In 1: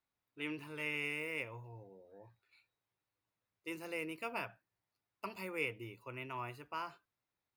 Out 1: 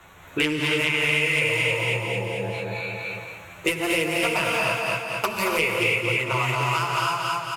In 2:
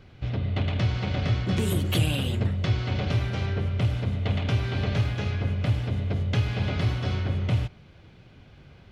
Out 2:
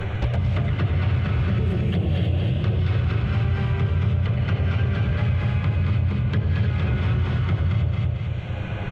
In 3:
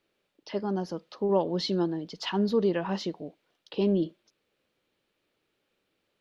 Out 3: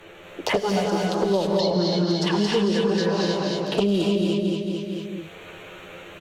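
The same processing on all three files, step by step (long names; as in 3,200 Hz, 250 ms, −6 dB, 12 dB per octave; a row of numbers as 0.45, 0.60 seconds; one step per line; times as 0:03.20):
adaptive Wiener filter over 9 samples
flanger swept by the level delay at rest 11.6 ms, full sweep at −20.5 dBFS
treble cut that deepens with the level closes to 1,200 Hz, closed at −20.5 dBFS
parametric band 250 Hz −13.5 dB 0.29 octaves
on a send: repeating echo 223 ms, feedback 34%, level −4.5 dB
on the sum: reverb whose tail is shaped and stops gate 340 ms rising, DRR −1.5 dB
in parallel at +0.5 dB: brickwall limiter −21.5 dBFS
on the sum: high-shelf EQ 4,400 Hz +9.5 dB
multiband upward and downward compressor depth 100%
loudness normalisation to −23 LKFS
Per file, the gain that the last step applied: +10.5, −3.5, −0.5 decibels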